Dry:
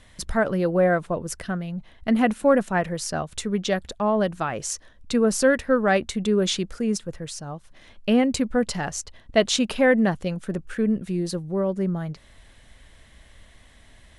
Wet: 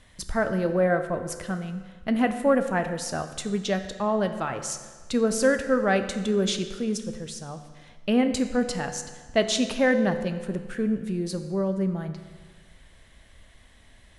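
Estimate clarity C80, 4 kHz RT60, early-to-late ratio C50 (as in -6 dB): 11.0 dB, 1.3 s, 10.0 dB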